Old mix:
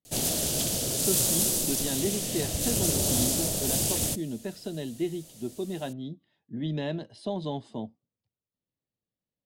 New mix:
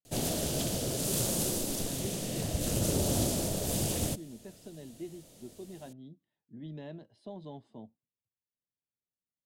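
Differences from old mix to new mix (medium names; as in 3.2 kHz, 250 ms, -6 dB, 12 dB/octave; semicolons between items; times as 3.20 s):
speech -12.0 dB; master: add treble shelf 2.6 kHz -8.5 dB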